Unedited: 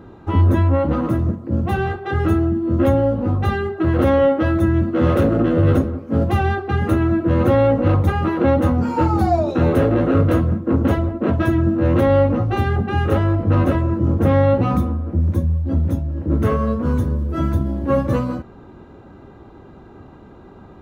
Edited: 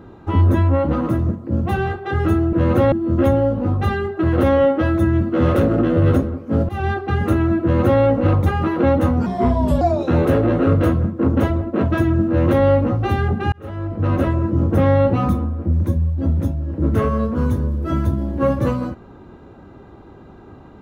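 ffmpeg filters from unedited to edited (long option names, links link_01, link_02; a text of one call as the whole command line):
ffmpeg -i in.wav -filter_complex "[0:a]asplit=7[link_01][link_02][link_03][link_04][link_05][link_06][link_07];[link_01]atrim=end=2.532[link_08];[link_02]atrim=start=7.228:end=7.622[link_09];[link_03]atrim=start=2.528:end=6.3,asetpts=PTS-STARTPTS,afade=type=out:start_time=3.768:duration=0.004:curve=hsin:silence=0.1[link_10];[link_04]atrim=start=6.3:end=8.874,asetpts=PTS-STARTPTS,afade=type=in:duration=0.3:curve=qsin:silence=0.1[link_11];[link_05]atrim=start=8.87:end=9.29,asetpts=PTS-STARTPTS,asetrate=33516,aresample=44100,atrim=end_sample=24371,asetpts=PTS-STARTPTS[link_12];[link_06]atrim=start=9.286:end=13,asetpts=PTS-STARTPTS,afade=type=out:start_time=3.71:duration=0.004:curve=hsin[link_13];[link_07]atrim=start=13,asetpts=PTS-STARTPTS,afade=type=in:duration=0.78[link_14];[link_08][link_09]acrossfade=duration=0.004:curve1=hsin:curve2=hsin[link_15];[link_10][link_11]concat=n=2:v=0:a=1[link_16];[link_15][link_16]acrossfade=duration=0.004:curve1=hsin:curve2=hsin[link_17];[link_17][link_12]acrossfade=duration=0.004:curve1=hsin:curve2=hsin[link_18];[link_13][link_14]concat=n=2:v=0:a=1[link_19];[link_18][link_19]acrossfade=duration=0.004:curve1=hsin:curve2=hsin" out.wav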